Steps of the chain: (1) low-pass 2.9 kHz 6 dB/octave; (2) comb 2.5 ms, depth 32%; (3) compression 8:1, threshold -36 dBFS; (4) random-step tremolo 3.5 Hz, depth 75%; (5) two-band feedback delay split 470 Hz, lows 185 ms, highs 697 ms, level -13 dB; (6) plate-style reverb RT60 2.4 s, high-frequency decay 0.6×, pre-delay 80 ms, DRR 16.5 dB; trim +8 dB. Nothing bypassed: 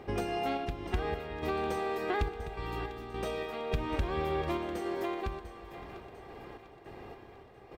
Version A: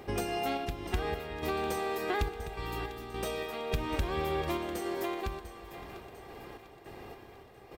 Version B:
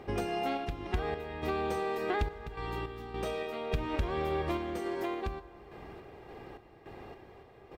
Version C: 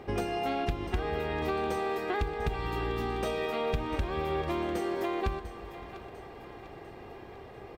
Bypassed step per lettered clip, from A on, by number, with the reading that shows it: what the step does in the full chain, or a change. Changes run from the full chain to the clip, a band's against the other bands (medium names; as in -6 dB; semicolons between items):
1, 8 kHz band +8.0 dB; 5, echo-to-direct -10.5 dB to -16.5 dB; 4, crest factor change -1.5 dB